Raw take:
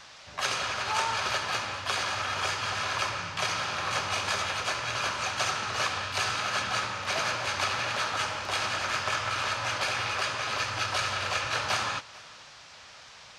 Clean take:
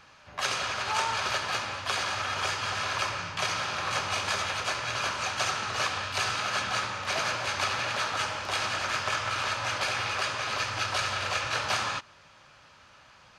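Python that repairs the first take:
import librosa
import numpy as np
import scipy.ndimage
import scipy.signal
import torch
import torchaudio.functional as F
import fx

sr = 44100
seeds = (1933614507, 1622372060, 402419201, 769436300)

y = fx.noise_reduce(x, sr, print_start_s=12.43, print_end_s=12.93, reduce_db=7.0)
y = fx.fix_echo_inverse(y, sr, delay_ms=443, level_db=-23.0)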